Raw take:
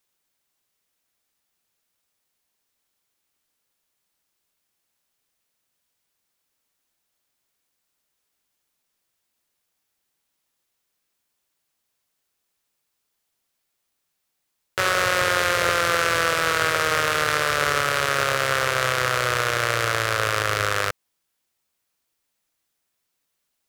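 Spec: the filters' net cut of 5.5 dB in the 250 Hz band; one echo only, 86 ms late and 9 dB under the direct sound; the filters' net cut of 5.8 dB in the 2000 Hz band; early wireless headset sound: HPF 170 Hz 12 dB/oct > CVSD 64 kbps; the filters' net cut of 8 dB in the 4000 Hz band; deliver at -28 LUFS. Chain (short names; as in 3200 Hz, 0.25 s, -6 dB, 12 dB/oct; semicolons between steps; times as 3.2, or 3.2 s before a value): HPF 170 Hz 12 dB/oct; bell 250 Hz -8 dB; bell 2000 Hz -6 dB; bell 4000 Hz -8.5 dB; echo 86 ms -9 dB; CVSD 64 kbps; gain -1.5 dB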